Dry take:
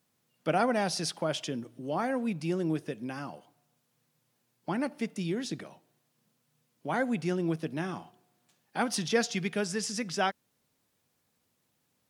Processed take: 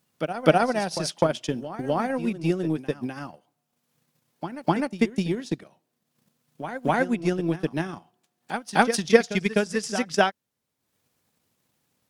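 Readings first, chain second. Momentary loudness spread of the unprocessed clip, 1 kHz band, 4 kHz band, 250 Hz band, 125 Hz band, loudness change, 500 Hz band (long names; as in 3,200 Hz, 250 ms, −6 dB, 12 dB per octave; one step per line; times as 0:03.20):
12 LU, +7.0 dB, +3.5 dB, +6.0 dB, +6.5 dB, +6.5 dB, +8.5 dB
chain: transient designer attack +11 dB, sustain −10 dB
backwards echo 254 ms −11 dB
level +2.5 dB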